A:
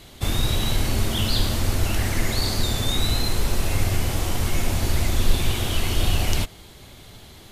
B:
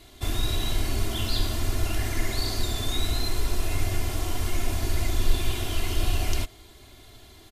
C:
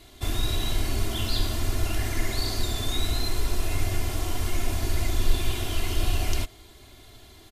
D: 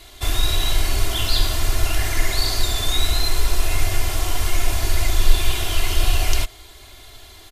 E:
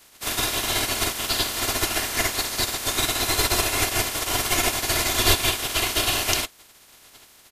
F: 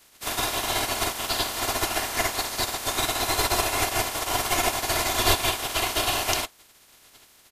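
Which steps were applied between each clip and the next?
comb 2.9 ms, depth 62%; trim -6.5 dB
no audible change
peaking EQ 190 Hz -12.5 dB 2 oct; trim +8.5 dB
spectral peaks clipped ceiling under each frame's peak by 30 dB; trim -9.5 dB
dynamic bell 830 Hz, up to +7 dB, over -41 dBFS, Q 1.2; trim -3.5 dB

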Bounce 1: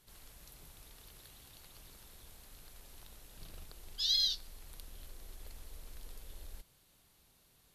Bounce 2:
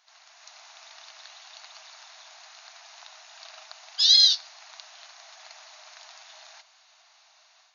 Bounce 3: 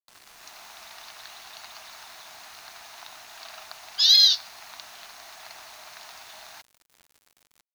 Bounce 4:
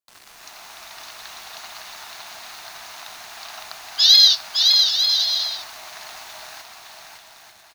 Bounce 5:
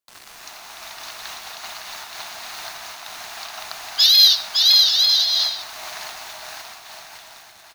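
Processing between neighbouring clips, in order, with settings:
FFT band-pass 610–6900 Hz; peaking EQ 3.2 kHz -5.5 dB 0.21 oct; level rider gain up to 7.5 dB; trim +7 dB
peaking EQ 1.1 kHz +5 dB 3 oct; bit crusher 8-bit; saturation -6 dBFS, distortion -24 dB
bouncing-ball echo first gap 560 ms, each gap 0.6×, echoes 5; trim +4.5 dB
saturation -8.5 dBFS, distortion -17 dB; reverberation RT60 0.40 s, pre-delay 65 ms, DRR 18.5 dB; random flutter of the level, depth 50%; trim +5.5 dB

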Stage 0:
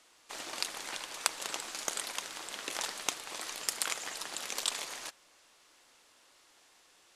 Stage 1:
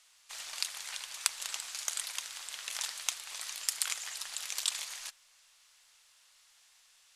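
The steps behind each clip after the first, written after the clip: amplifier tone stack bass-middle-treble 10-0-10; trim +2 dB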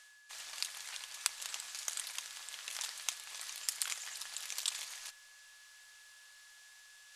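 reverse; upward compressor, threshold -47 dBFS; reverse; whistle 1.7 kHz -56 dBFS; trim -4 dB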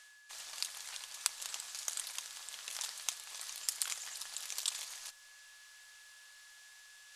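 dynamic bell 2.1 kHz, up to -4 dB, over -57 dBFS, Q 0.96; trim +1 dB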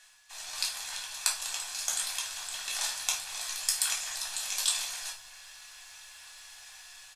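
comb 1.2 ms, depth 37%; level rider gain up to 6 dB; reverberation RT60 0.45 s, pre-delay 3 ms, DRR -4.5 dB; trim -2 dB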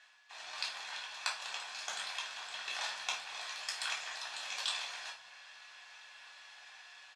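band-pass 240–3200 Hz

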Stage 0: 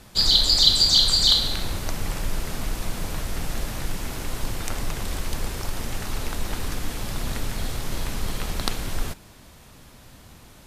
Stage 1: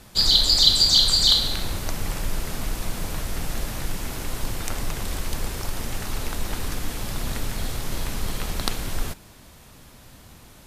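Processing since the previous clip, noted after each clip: treble shelf 10 kHz +3.5 dB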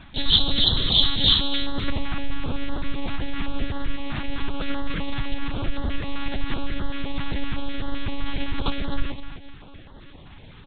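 feedback delay 254 ms, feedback 35%, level -11.5 dB; monotone LPC vocoder at 8 kHz 280 Hz; step-sequenced notch 7.8 Hz 480–2400 Hz; trim +4.5 dB

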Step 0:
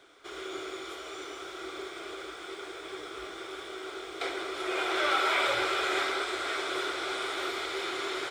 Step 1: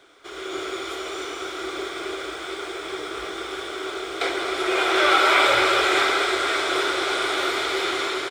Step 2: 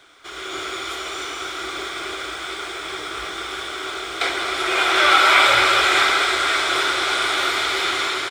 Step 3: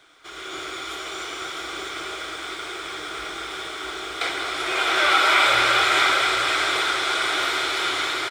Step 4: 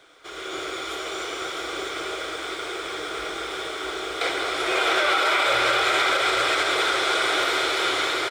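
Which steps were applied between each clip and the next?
level rider gain up to 5 dB; on a send: loudspeakers at several distances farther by 74 m -12 dB, 92 m -10 dB; on the sum: trim +4 dB
peaking EQ 420 Hz -9 dB 1.4 oct; trim +5 dB
delay 661 ms -6 dB; reverberation RT60 1.9 s, pre-delay 6 ms, DRR 11.5 dB; trim -4 dB
peaking EQ 500 Hz +8.5 dB 0.73 oct; peak limiter -12 dBFS, peak gain reduction 7 dB

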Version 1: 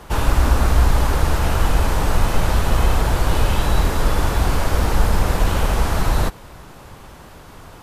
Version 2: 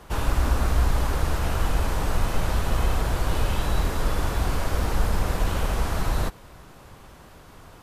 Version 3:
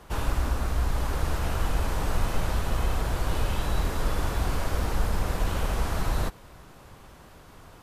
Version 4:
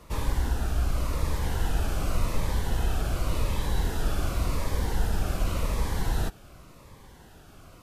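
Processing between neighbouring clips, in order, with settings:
band-stop 870 Hz, Q 27; trim -6.5 dB
gain riding 0.5 s; trim -3 dB
Shepard-style phaser falling 0.89 Hz

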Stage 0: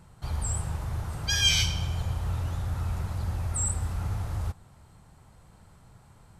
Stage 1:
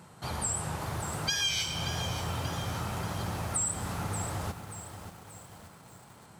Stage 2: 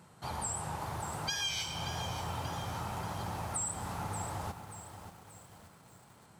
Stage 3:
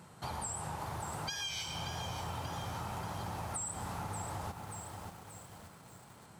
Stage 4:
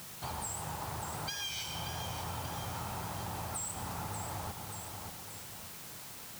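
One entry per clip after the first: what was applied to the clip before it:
high-pass 180 Hz 12 dB/octave; compression 6:1, threshold -34 dBFS, peak gain reduction 14.5 dB; bit-crushed delay 582 ms, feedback 55%, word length 9-bit, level -9.5 dB; trim +6 dB
dynamic bell 870 Hz, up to +7 dB, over -55 dBFS, Q 2.3; trim -5.5 dB
compression 3:1, threshold -41 dBFS, peak gain reduction 8.5 dB; trim +3 dB
word length cut 8-bit, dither triangular

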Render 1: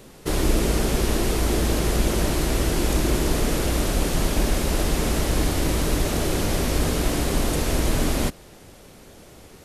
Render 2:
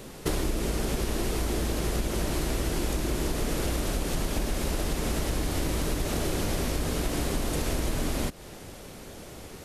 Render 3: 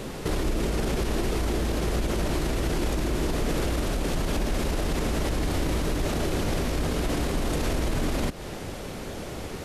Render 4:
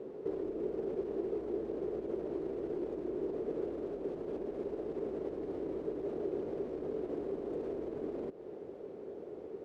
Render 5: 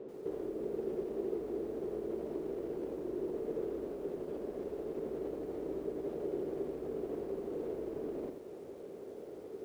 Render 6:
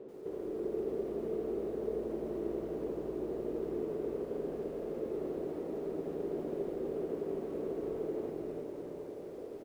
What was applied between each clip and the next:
compression 12:1, threshold -27 dBFS, peak gain reduction 13 dB; trim +3 dB
treble shelf 6.1 kHz -8.5 dB; peak limiter -26.5 dBFS, peak gain reduction 11.5 dB; trim +8.5 dB
band-pass filter 410 Hz, Q 4.1; trim -1.5 dB
bit-crushed delay 85 ms, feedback 35%, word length 10-bit, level -6 dB; trim -2 dB
delay 321 ms -5 dB; reverberation RT60 3.2 s, pre-delay 115 ms, DRR 0.5 dB; trim -2 dB

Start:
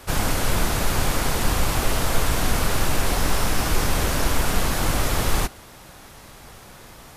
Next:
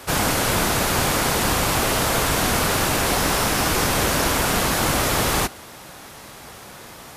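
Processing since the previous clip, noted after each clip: high-pass 150 Hz 6 dB/octave; trim +5 dB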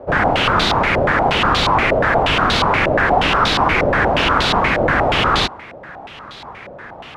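step-sequenced low-pass 8.4 Hz 590–3800 Hz; trim +2.5 dB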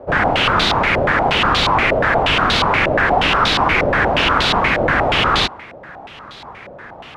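dynamic bell 2.8 kHz, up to +3 dB, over -31 dBFS, Q 0.77; trim -1 dB

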